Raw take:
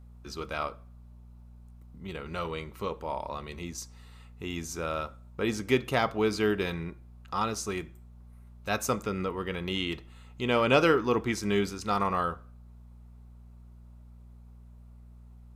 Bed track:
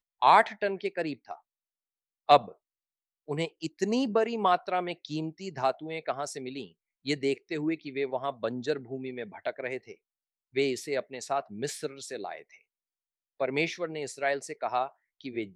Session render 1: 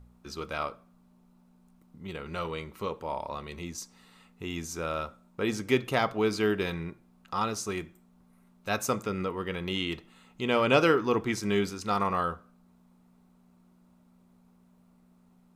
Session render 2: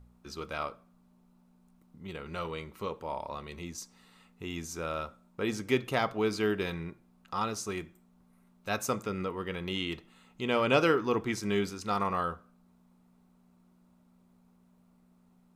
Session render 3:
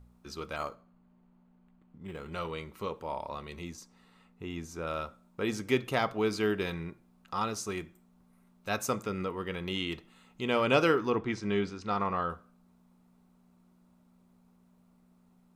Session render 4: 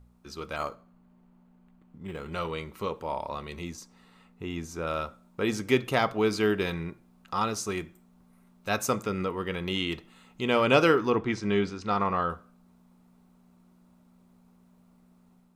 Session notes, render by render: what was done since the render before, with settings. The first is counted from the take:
hum removal 60 Hz, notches 2
level −2.5 dB
0:00.56–0:02.33: linearly interpolated sample-rate reduction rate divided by 8×; 0:03.75–0:04.87: high-shelf EQ 2,800 Hz −9 dB; 0:11.10–0:12.30: high-frequency loss of the air 130 metres
automatic gain control gain up to 4 dB

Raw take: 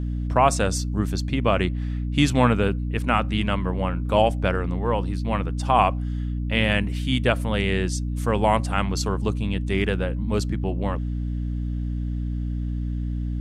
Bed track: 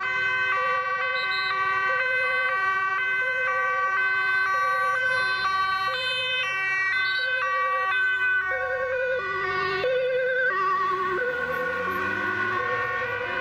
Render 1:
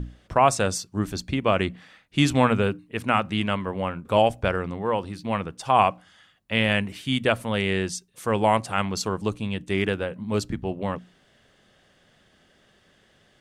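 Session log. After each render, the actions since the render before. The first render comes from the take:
mains-hum notches 60/120/180/240/300 Hz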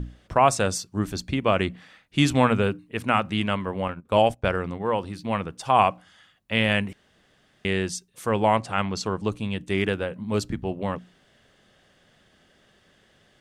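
0:03.88–0:04.96: noise gate −34 dBFS, range −14 dB
0:06.93–0:07.65: fill with room tone
0:08.29–0:09.32: high-frequency loss of the air 53 metres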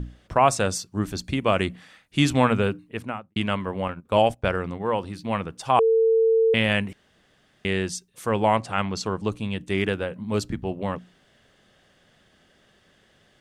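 0:01.24–0:02.18: parametric band 9,800 Hz +7 dB 1.2 octaves
0:02.82–0:03.36: fade out and dull
0:05.79–0:06.54: beep over 450 Hz −15.5 dBFS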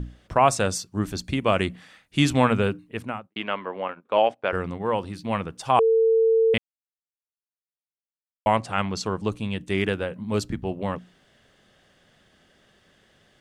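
0:03.27–0:04.53: band-pass filter 370–3,200 Hz
0:06.58–0:08.46: silence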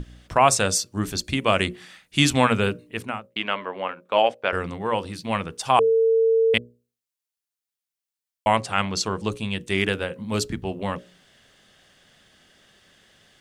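high-shelf EQ 2,000 Hz +8 dB
mains-hum notches 60/120/180/240/300/360/420/480/540/600 Hz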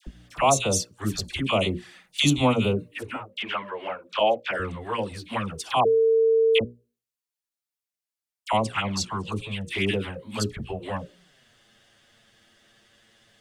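flanger swept by the level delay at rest 9.3 ms, full sweep at −18 dBFS
all-pass dispersion lows, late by 69 ms, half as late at 1,200 Hz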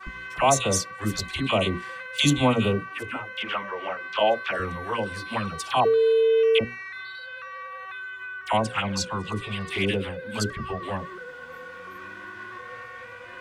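mix in bed track −13.5 dB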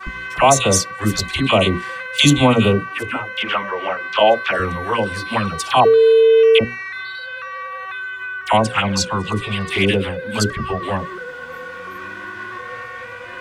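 level +8.5 dB
brickwall limiter −2 dBFS, peak gain reduction 2.5 dB

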